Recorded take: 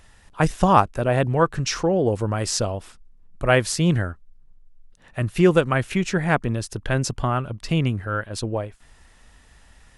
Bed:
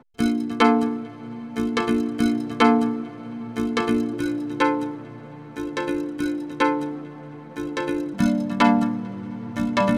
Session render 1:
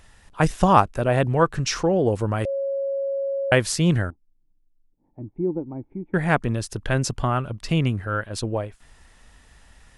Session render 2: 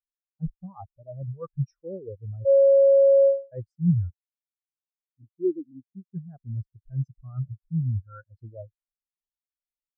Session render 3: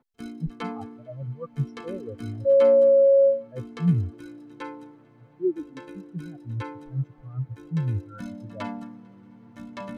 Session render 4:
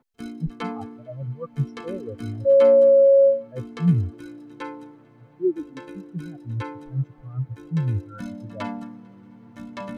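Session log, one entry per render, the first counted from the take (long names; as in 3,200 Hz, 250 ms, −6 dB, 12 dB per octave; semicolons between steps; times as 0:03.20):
0:02.45–0:03.52: beep over 550 Hz −22.5 dBFS; 0:04.10–0:06.14: formant resonators in series u
reversed playback; downward compressor 10 to 1, threshold −26 dBFS, peak gain reduction 17 dB; reversed playback; every bin expanded away from the loudest bin 4 to 1
mix in bed −17 dB
level +2.5 dB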